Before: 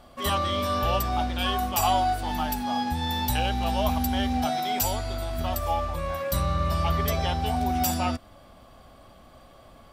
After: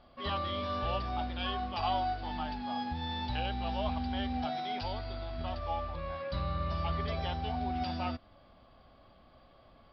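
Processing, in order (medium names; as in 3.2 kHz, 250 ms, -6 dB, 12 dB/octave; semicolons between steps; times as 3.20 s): resampled via 11.025 kHz; trim -8.5 dB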